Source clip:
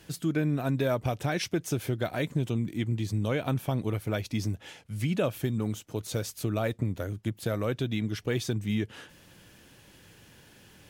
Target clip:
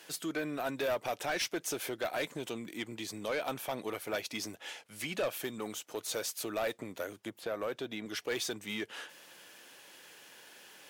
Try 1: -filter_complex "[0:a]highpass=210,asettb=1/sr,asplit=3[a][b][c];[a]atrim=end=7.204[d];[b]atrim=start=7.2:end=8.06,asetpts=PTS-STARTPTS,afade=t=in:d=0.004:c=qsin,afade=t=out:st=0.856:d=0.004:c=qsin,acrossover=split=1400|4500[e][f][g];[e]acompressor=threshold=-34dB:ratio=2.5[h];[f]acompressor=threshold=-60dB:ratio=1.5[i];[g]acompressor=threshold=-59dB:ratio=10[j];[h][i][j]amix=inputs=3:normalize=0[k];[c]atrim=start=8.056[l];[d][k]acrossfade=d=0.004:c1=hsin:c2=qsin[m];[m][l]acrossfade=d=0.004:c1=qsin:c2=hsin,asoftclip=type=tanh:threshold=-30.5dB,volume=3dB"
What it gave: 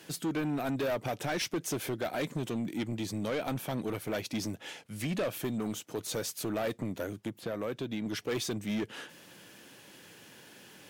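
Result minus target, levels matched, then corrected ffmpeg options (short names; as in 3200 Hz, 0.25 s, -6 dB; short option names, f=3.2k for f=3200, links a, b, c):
250 Hz band +5.0 dB
-filter_complex "[0:a]highpass=520,asettb=1/sr,asplit=3[a][b][c];[a]atrim=end=7.204[d];[b]atrim=start=7.2:end=8.06,asetpts=PTS-STARTPTS,afade=t=in:d=0.004:c=qsin,afade=t=out:st=0.856:d=0.004:c=qsin,acrossover=split=1400|4500[e][f][g];[e]acompressor=threshold=-34dB:ratio=2.5[h];[f]acompressor=threshold=-60dB:ratio=1.5[i];[g]acompressor=threshold=-59dB:ratio=10[j];[h][i][j]amix=inputs=3:normalize=0[k];[c]atrim=start=8.056[l];[d][k]acrossfade=d=0.004:c1=hsin:c2=qsin[m];[m][l]acrossfade=d=0.004:c1=qsin:c2=hsin,asoftclip=type=tanh:threshold=-30.5dB,volume=3dB"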